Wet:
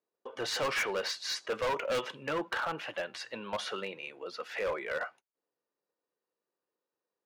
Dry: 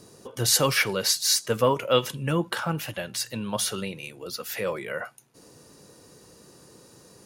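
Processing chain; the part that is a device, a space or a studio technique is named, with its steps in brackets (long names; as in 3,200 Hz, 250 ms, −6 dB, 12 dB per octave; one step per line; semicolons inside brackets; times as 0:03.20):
walkie-talkie (band-pass filter 460–2,500 Hz; hard clipping −28 dBFS, distortion −5 dB; noise gate −51 dBFS, range −33 dB)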